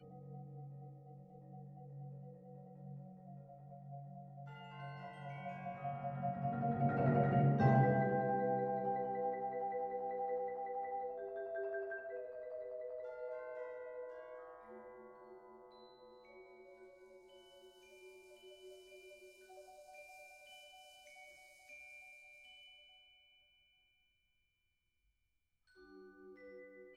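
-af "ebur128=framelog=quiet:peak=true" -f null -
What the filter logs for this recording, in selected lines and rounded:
Integrated loudness:
  I:         -39.4 LUFS
  Threshold: -52.8 LUFS
Loudness range:
  LRA:        24.3 LU
  Threshold: -62.7 LUFS
  LRA low:   -59.2 LUFS
  LRA high:  -34.9 LUFS
True peak:
  Peak:      -17.9 dBFS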